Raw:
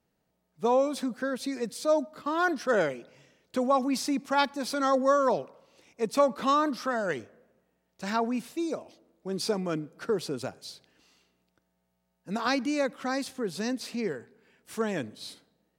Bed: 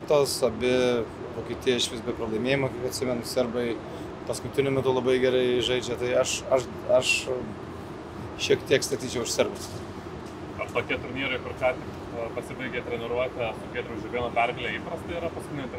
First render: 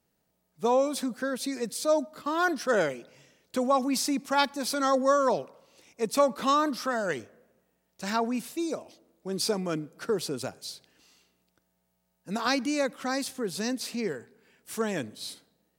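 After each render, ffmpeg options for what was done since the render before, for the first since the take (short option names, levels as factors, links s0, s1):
-af "highshelf=f=5500:g=8.5"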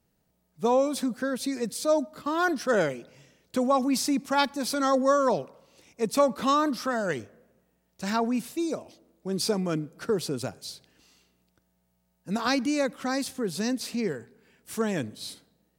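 -af "lowshelf=f=190:g=8.5"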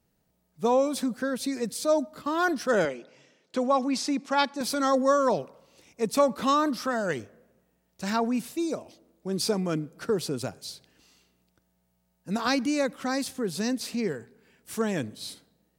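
-filter_complex "[0:a]asettb=1/sr,asplit=3[s0][s1][s2];[s0]atrim=end=2.854[s3];[s1]atrim=start=2.85:end=4.61,asetpts=PTS-STARTPTS,afade=t=in:d=0.004:c=qsin,afade=t=out:st=1.756:d=0.004:c=qsin,highpass=240,lowpass=6400[s4];[s2]atrim=start=4.606[s5];[s3][s4]acrossfade=d=0.004:c1=hsin:c2=qsin[s6];[s6][s5]acrossfade=d=0.004:c1=qsin:c2=hsin"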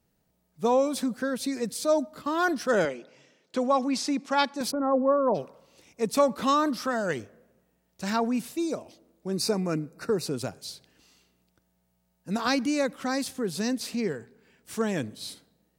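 -filter_complex "[0:a]asplit=3[s0][s1][s2];[s0]afade=t=out:st=4.7:d=0.02[s3];[s1]lowpass=f=1100:w=0.5412,lowpass=f=1100:w=1.3066,afade=t=in:st=4.7:d=0.02,afade=t=out:st=5.34:d=0.02[s4];[s2]afade=t=in:st=5.34:d=0.02[s5];[s3][s4][s5]amix=inputs=3:normalize=0,asettb=1/sr,asplit=3[s6][s7][s8];[s6]atrim=end=9.314[s9];[s7]atrim=start=9.31:end=10.26,asetpts=PTS-STARTPTS,afade=t=in:d=0.004:c=qsin,afade=t=out:st=0.946:d=0.004:c=qsin,asuperstop=centerf=3200:order=20:qfactor=4.3[s10];[s8]atrim=start=10.256[s11];[s9][s10]acrossfade=d=0.004:c1=hsin:c2=qsin[s12];[s12][s11]acrossfade=d=0.004:c1=qsin:c2=hsin,asettb=1/sr,asplit=3[s13][s14][s15];[s13]atrim=end=14.054[s16];[s14]atrim=start=14.05:end=14.81,asetpts=PTS-STARTPTS,afade=t=in:d=0.004:c=qsin,afade=t=out:st=0.756:d=0.004:c=qsin,equalizer=f=12000:w=1.5:g=-5.5[s17];[s15]atrim=start=14.806[s18];[s16][s17]acrossfade=d=0.004:c1=hsin:c2=qsin[s19];[s19][s18]acrossfade=d=0.004:c1=qsin:c2=hsin"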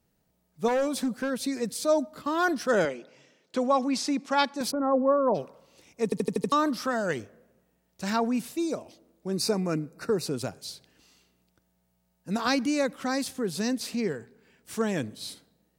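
-filter_complex "[0:a]asettb=1/sr,asplit=3[s0][s1][s2];[s0]atrim=end=0.684[s3];[s1]atrim=start=0.68:end=1.3,asetpts=PTS-STARTPTS,afade=t=in:d=0.004:c=qsin,afade=t=out:st=0.616:d=0.004:c=qsin,asoftclip=type=hard:threshold=0.075[s4];[s2]atrim=start=1.296[s5];[s3][s4]acrossfade=d=0.004:c1=hsin:c2=qsin[s6];[s6][s5]acrossfade=d=0.004:c1=qsin:c2=hsin,asplit=7[s7][s8][s9][s10][s11][s12][s13];[s7]atrim=end=6.122[s14];[s8]atrim=start=6.038:end=6.122[s15];[s9]atrim=start=6.038:end=6.122[s16];[s10]atrim=start=6.038:end=6.122[s17];[s11]atrim=start=6.038:end=6.122[s18];[s12]atrim=start=6.038:end=6.122[s19];[s13]atrim=start=6.518[s20];[s14][s15]acrossfade=d=0.004:c1=hsin:c2=hsin[s21];[s21][s16]acrossfade=d=0.004:c1=hsin:c2=hsin[s22];[s22][s17]acrossfade=d=0.004:c1=hsin:c2=hsin[s23];[s23][s18]acrossfade=d=0.004:c1=hsin:c2=hsin[s24];[s24][s19]acrossfade=d=0.004:c1=hsin:c2=hsin[s25];[s25][s20]acrossfade=d=0.004:c1=hsin:c2=hsin"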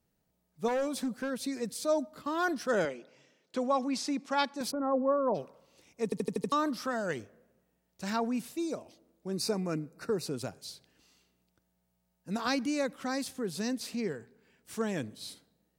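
-af "volume=0.562"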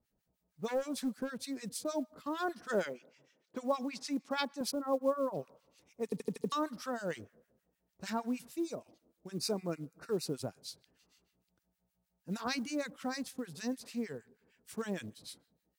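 -filter_complex "[0:a]acrossover=split=1200[s0][s1];[s0]aeval=exprs='val(0)*(1-1/2+1/2*cos(2*PI*6.5*n/s))':c=same[s2];[s1]aeval=exprs='val(0)*(1-1/2-1/2*cos(2*PI*6.5*n/s))':c=same[s3];[s2][s3]amix=inputs=2:normalize=0,acrusher=bits=8:mode=log:mix=0:aa=0.000001"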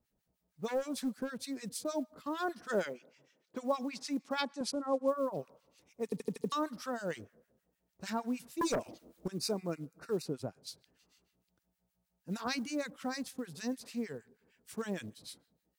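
-filter_complex "[0:a]asettb=1/sr,asplit=3[s0][s1][s2];[s0]atrim=end=4.424[s3];[s1]atrim=start=4.42:end=5.08,asetpts=PTS-STARTPTS,afade=t=in:d=0.004:c=qsin,afade=t=out:st=0.656:d=0.004:c=qsin,lowpass=f=9800:w=0.5412,lowpass=f=9800:w=1.3066[s4];[s2]atrim=start=5.076[s5];[s3][s4]acrossfade=d=0.004:c1=hsin:c2=qsin[s6];[s6][s5]acrossfade=d=0.004:c1=qsin:c2=hsin,asettb=1/sr,asplit=3[s7][s8][s9];[s7]atrim=end=8.614[s10];[s8]atrim=start=8.61:end=9.28,asetpts=PTS-STARTPTS,afade=t=in:d=0.004:c=qsin,afade=t=out:st=0.666:d=0.004:c=qsin,aeval=exprs='0.0447*sin(PI/2*2.82*val(0)/0.0447)':c=same[s11];[s9]atrim=start=9.276[s12];[s10][s11]acrossfade=d=0.004:c1=hsin:c2=qsin[s13];[s13][s12]acrossfade=d=0.004:c1=qsin:c2=hsin,asettb=1/sr,asplit=3[s14][s15][s16];[s14]atrim=end=10.224[s17];[s15]atrim=start=10.22:end=10.67,asetpts=PTS-STARTPTS,afade=t=in:d=0.004:c=qsin,afade=t=out:st=0.446:d=0.004:c=qsin,highshelf=f=3000:g=-9.5[s18];[s16]atrim=start=10.666[s19];[s17][s18]acrossfade=d=0.004:c1=hsin:c2=qsin[s20];[s20][s19]acrossfade=d=0.004:c1=qsin:c2=hsin"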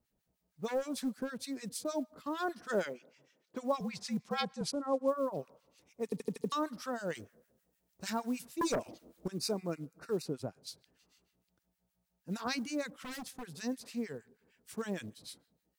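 -filter_complex "[0:a]asettb=1/sr,asplit=3[s0][s1][s2];[s0]atrim=end=3.804[s3];[s1]atrim=start=3.8:end=4.69,asetpts=PTS-STARTPTS,afade=t=in:d=0.004:c=qsin,afade=t=out:st=0.886:d=0.004:c=qsin,afreqshift=-57[s4];[s2]atrim=start=4.686[s5];[s3][s4]acrossfade=d=0.004:c1=hsin:c2=qsin[s6];[s6][s5]acrossfade=d=0.004:c1=qsin:c2=hsin,asettb=1/sr,asplit=3[s7][s8][s9];[s7]atrim=end=7.154[s10];[s8]atrim=start=7.15:end=8.47,asetpts=PTS-STARTPTS,afade=t=in:d=0.004:c=qsin,afade=t=out:st=1.316:d=0.004:c=qsin,highshelf=f=4300:g=7[s11];[s9]atrim=start=8.466[s12];[s10][s11]acrossfade=d=0.004:c1=hsin:c2=qsin[s13];[s13][s12]acrossfade=d=0.004:c1=qsin:c2=hsin,asettb=1/sr,asplit=3[s14][s15][s16];[s14]atrim=end=12.924[s17];[s15]atrim=start=12.92:end=13.6,asetpts=PTS-STARTPTS,afade=t=in:d=0.004:c=qsin,afade=t=out:st=0.676:d=0.004:c=qsin,aeval=exprs='0.0133*(abs(mod(val(0)/0.0133+3,4)-2)-1)':c=same[s18];[s16]atrim=start=13.596[s19];[s17][s18]acrossfade=d=0.004:c1=hsin:c2=qsin[s20];[s20][s19]acrossfade=d=0.004:c1=qsin:c2=hsin"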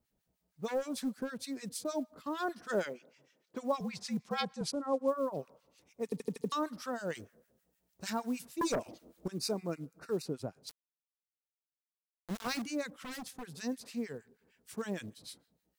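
-filter_complex "[0:a]asettb=1/sr,asplit=3[s0][s1][s2];[s0]atrim=end=10.694[s3];[s1]atrim=start=10.69:end=12.62,asetpts=PTS-STARTPTS,afade=t=in:d=0.004:c=qsin,afade=t=out:st=1.926:d=0.004:c=qsin,aeval=exprs='val(0)*gte(abs(val(0)),0.0126)':c=same[s4];[s2]atrim=start=12.616[s5];[s3][s4]acrossfade=d=0.004:c1=hsin:c2=qsin[s6];[s6][s5]acrossfade=d=0.004:c1=qsin:c2=hsin"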